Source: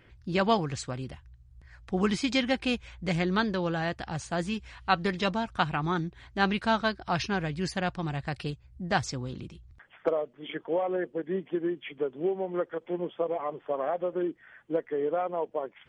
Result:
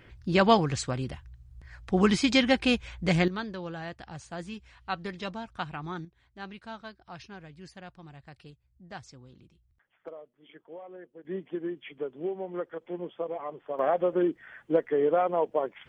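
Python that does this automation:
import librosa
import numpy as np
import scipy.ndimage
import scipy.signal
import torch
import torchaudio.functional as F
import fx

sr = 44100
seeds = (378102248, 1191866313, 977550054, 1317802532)

y = fx.gain(x, sr, db=fx.steps((0.0, 4.0), (3.28, -8.0), (6.05, -16.0), (11.25, -4.0), (13.79, 4.5)))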